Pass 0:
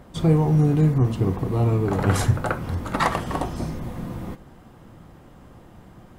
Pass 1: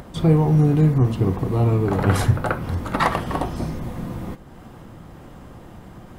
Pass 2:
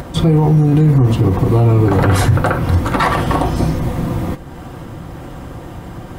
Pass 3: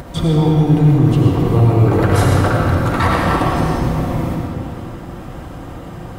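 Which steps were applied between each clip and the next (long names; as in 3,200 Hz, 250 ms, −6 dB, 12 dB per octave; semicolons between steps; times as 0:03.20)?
dynamic equaliser 7,100 Hz, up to −6 dB, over −51 dBFS, Q 1.5; upward compression, threshold −36 dBFS; level +2 dB
notch comb filter 210 Hz; boost into a limiter +15.5 dB; level −3.5 dB
convolution reverb RT60 2.6 s, pre-delay 50 ms, DRR −2 dB; level −4 dB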